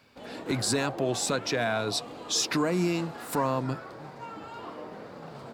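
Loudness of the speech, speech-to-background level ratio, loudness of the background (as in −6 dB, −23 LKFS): −29.0 LKFS, 12.5 dB, −41.5 LKFS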